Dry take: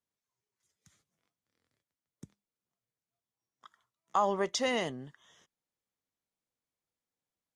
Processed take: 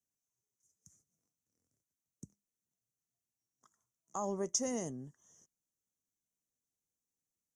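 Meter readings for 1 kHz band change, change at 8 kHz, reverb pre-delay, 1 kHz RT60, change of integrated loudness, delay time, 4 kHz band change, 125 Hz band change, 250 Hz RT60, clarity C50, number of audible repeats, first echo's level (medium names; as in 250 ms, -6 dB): -12.0 dB, +5.0 dB, no reverb, no reverb, -6.0 dB, no echo, -9.0 dB, -1.5 dB, no reverb, no reverb, no echo, no echo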